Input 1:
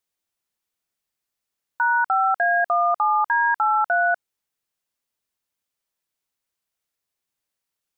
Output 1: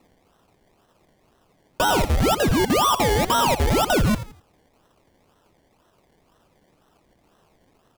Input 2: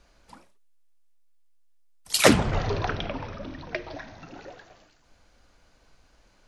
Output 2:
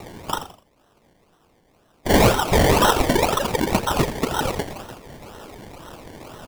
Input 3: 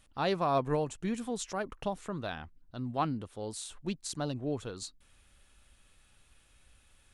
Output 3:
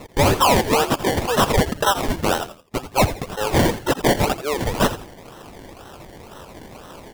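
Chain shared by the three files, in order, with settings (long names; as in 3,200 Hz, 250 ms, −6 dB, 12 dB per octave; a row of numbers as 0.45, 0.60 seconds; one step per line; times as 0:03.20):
high-pass filter 1,300 Hz 12 dB per octave
reverb reduction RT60 0.64 s
comb filter 2.2 ms, depth 99%
downward compressor 5 to 1, threshold −32 dBFS
sample-and-hold swept by an LFO 27×, swing 60% 2 Hz
soft clipping −38 dBFS
echo with shifted repeats 84 ms, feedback 32%, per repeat −100 Hz, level −12.5 dB
loudness normalisation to −20 LKFS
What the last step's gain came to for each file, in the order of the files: +21.0, +27.0, +27.5 decibels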